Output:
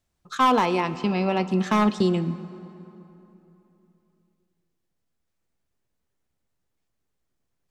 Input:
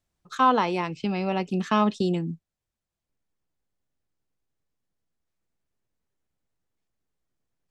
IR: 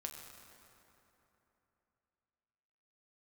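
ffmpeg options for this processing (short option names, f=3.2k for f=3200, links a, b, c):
-filter_complex "[0:a]asoftclip=type=hard:threshold=-16.5dB,asplit=2[a][b];[1:a]atrim=start_sample=2205[c];[b][c]afir=irnorm=-1:irlink=0,volume=-3.5dB[d];[a][d]amix=inputs=2:normalize=0"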